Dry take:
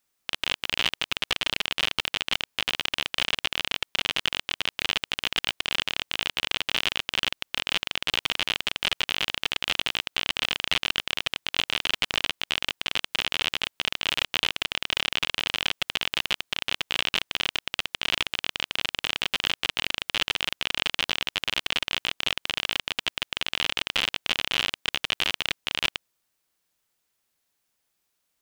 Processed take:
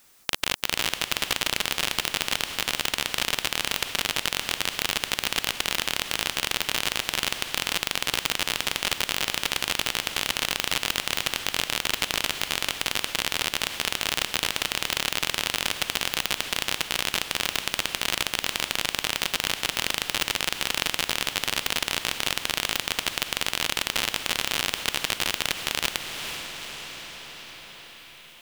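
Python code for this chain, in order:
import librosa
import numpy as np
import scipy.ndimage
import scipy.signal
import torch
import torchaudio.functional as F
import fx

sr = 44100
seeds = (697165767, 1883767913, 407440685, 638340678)

y = fx.echo_diffused(x, sr, ms=455, feedback_pct=48, wet_db=-12.0)
y = fx.spectral_comp(y, sr, ratio=2.0)
y = F.gain(torch.from_numpy(y), 1.5).numpy()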